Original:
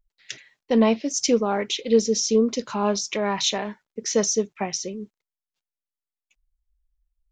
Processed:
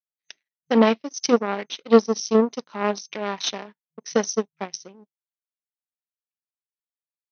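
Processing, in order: power-law curve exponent 2; FFT band-pass 160–6300 Hz; gain +6.5 dB

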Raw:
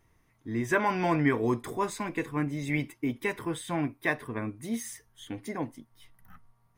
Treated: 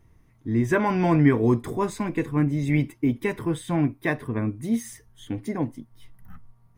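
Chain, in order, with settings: low shelf 390 Hz +11.5 dB

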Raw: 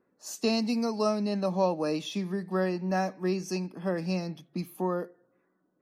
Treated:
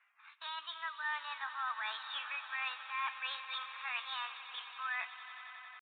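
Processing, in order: Chebyshev high-pass 760 Hz, order 4; bell 1500 Hz +10 dB 2 oct; reverse; compressor 12:1, threshold -40 dBFS, peak gain reduction 19.5 dB; reverse; pitch shift +6 st; on a send: swelling echo 91 ms, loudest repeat 5, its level -17 dB; on the sum: downsampling 8000 Hz; mismatched tape noise reduction decoder only; gain +4.5 dB

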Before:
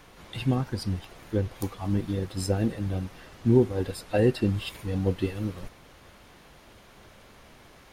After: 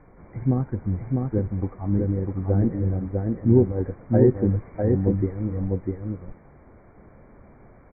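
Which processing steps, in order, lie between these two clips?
brick-wall FIR low-pass 2400 Hz; tilt shelf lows +8 dB, about 1100 Hz; echo 0.65 s -3 dB; gain -4 dB

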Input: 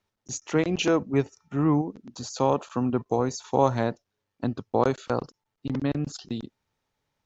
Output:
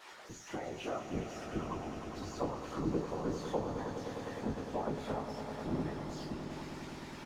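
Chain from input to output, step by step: switching spikes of -18.5 dBFS; LPF 1000 Hz 12 dB/oct; tilt +3 dB/oct; compressor, threshold -28 dBFS, peak gain reduction 10.5 dB; resonator 130 Hz, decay 0.28 s, harmonics all, mix 100%; whisperiser; doubler 19 ms -12 dB; on a send: swelling echo 0.102 s, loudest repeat 5, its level -12 dB; on the sum: gain +6 dB

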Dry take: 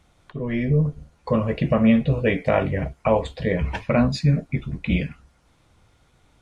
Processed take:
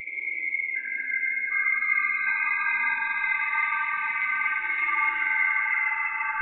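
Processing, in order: band-swap scrambler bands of 2000 Hz; treble ducked by the level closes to 2000 Hz, closed at -15 dBFS; high shelf 2300 Hz -4.5 dB; Paulstretch 29×, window 0.05 s, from 2.66; limiter -19.5 dBFS, peak gain reduction 5.5 dB; flutter echo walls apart 9.9 m, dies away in 0.57 s; transient shaper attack +7 dB, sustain -8 dB; echoes that change speed 0.753 s, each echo -5 st, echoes 3; bell 66 Hz -9.5 dB 2.6 oct; spring tank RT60 3.8 s, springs 42 ms, chirp 50 ms, DRR -2 dB; spectral expander 1.5:1; gain -6.5 dB

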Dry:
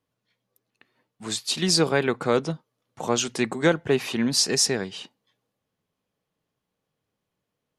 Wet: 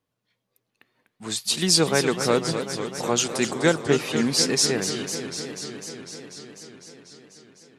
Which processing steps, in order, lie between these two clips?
1.36–3.82 high shelf 8500 Hz +10 dB; warbling echo 0.248 s, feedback 78%, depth 184 cents, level -9.5 dB

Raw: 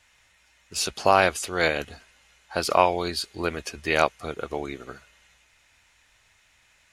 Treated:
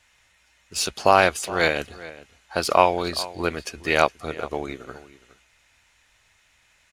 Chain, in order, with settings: in parallel at -9 dB: crossover distortion -32 dBFS; on the sum: outdoor echo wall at 71 m, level -17 dB

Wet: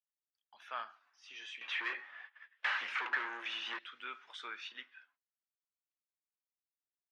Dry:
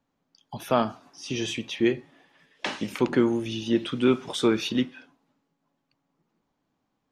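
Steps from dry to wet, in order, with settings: gate -58 dBFS, range -20 dB; 1.61–3.79 overdrive pedal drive 30 dB, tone 1500 Hz, clips at -9 dBFS; ladder band-pass 1900 Hz, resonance 40%; gain -1 dB

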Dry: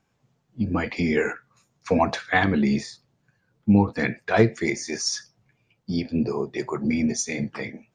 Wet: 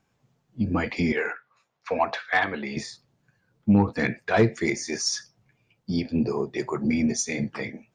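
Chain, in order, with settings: 1.12–2.77 three-band isolator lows -16 dB, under 470 Hz, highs -18 dB, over 4300 Hz; soft clip -9 dBFS, distortion -20 dB

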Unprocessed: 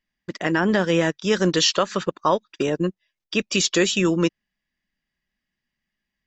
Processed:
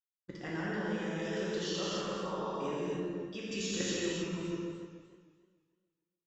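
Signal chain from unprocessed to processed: resonator 78 Hz, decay 0.31 s, harmonics odd, mix 30%; dark delay 0.149 s, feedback 49%, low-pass 1700 Hz, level -5 dB; expander -53 dBFS; resonator 86 Hz, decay 1.2 s, harmonics all, mix 70%; level quantiser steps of 13 dB; low shelf 160 Hz +5.5 dB; non-linear reverb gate 0.33 s flat, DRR -6.5 dB; warbling echo 0.294 s, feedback 34%, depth 91 cents, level -16.5 dB; gain -4 dB

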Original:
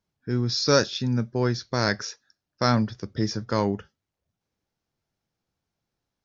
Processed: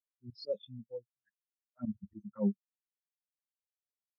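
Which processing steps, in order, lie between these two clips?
limiter -13 dBFS, peak gain reduction 6.5 dB; time stretch by phase-locked vocoder 0.67×; high shelf 4200 Hz -5.5 dB; envelope flanger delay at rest 11.2 ms, full sweep at -22 dBFS; tremolo triangle 0.62 Hz, depth 95%; spectral noise reduction 15 dB; auto swell 0.153 s; spectral expander 2.5:1; gain +6 dB

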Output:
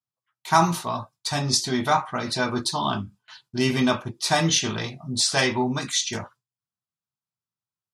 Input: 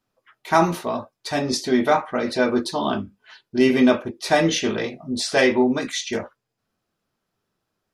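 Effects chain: HPF 90 Hz; gate with hold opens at -41 dBFS; graphic EQ 125/250/500/1000/2000/4000/8000 Hz +10/-6/-11/+5/-5/+3/+7 dB

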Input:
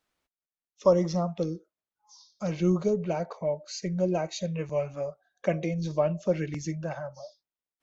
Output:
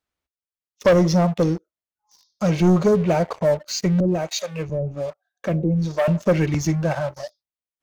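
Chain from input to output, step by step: bell 69 Hz +9 dB 1.1 oct; sample leveller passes 3; 4–6.08 harmonic tremolo 1.2 Hz, depth 100%, crossover 500 Hz

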